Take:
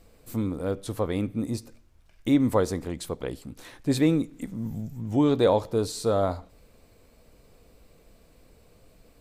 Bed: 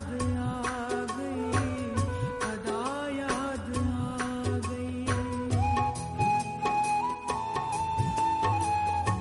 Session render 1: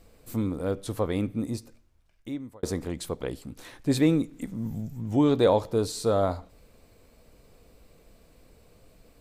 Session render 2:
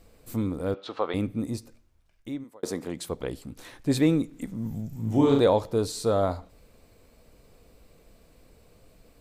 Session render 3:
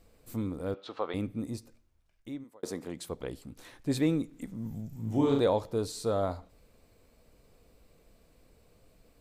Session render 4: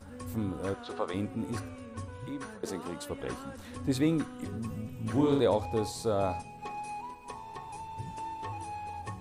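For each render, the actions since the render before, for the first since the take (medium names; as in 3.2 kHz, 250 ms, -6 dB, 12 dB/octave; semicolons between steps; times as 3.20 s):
1.28–2.63 s: fade out
0.74–1.14 s: cabinet simulation 370–4700 Hz, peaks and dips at 810 Hz +5 dB, 1.3 kHz +9 dB, 2.7 kHz +5 dB, 3.9 kHz +5 dB; 2.43–3.09 s: high-pass 330 Hz -> 110 Hz; 4.88–5.40 s: flutter echo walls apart 6.2 m, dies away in 0.64 s
trim -5.5 dB
add bed -12 dB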